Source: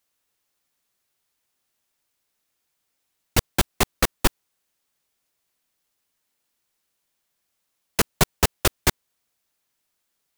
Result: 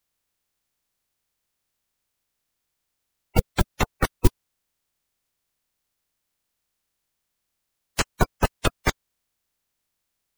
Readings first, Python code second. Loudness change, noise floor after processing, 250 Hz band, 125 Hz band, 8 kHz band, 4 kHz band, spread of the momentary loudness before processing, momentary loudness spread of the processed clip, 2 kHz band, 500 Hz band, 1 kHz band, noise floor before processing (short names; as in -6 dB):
-2.5 dB, -80 dBFS, 0.0 dB, +1.5 dB, -8.0 dB, -6.0 dB, 4 LU, 4 LU, -2.0 dB, -0.5 dB, -0.5 dB, -77 dBFS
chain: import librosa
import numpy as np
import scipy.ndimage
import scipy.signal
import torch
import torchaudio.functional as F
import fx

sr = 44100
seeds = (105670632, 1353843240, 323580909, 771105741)

y = fx.spec_quant(x, sr, step_db=30)
y = fx.low_shelf(y, sr, hz=110.0, db=10.5)
y = y * librosa.db_to_amplitude(-3.0)